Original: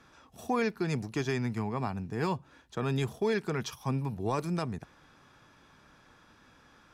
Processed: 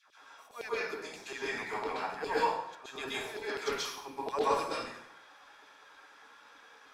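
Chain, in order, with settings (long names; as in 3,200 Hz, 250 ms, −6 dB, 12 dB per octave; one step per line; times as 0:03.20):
volume swells 239 ms
auto-filter high-pass saw down 9.8 Hz 410–4,300 Hz
dense smooth reverb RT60 0.74 s, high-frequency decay 0.85×, pre-delay 115 ms, DRR −9 dB
level −7 dB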